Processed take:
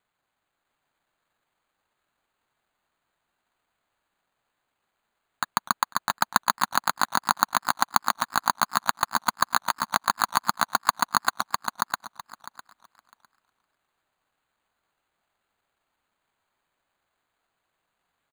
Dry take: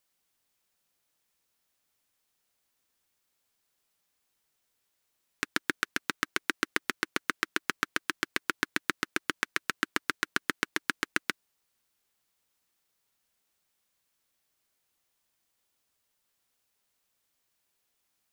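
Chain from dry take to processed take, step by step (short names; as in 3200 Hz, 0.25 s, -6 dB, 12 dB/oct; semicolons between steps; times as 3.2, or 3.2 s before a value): rattling part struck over -48 dBFS, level -24 dBFS; band shelf 1500 Hz +11 dB; pitch shift -6.5 st; on a send: feedback echo 0.654 s, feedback 17%, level -3 dB; on the sum: careless resampling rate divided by 8×, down none, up hold; warbling echo 0.252 s, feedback 45%, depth 205 cents, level -17.5 dB; gain -5 dB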